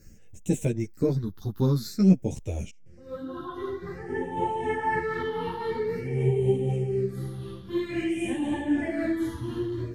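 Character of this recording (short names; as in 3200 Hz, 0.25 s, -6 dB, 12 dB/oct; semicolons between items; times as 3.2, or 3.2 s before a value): phasing stages 6, 0.5 Hz, lowest notch 610–1300 Hz; tremolo triangle 3.9 Hz, depth 45%; a shimmering, thickened sound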